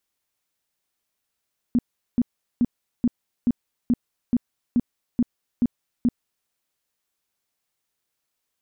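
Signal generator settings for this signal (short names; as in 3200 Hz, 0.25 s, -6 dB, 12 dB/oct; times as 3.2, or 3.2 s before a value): tone bursts 241 Hz, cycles 9, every 0.43 s, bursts 11, -15 dBFS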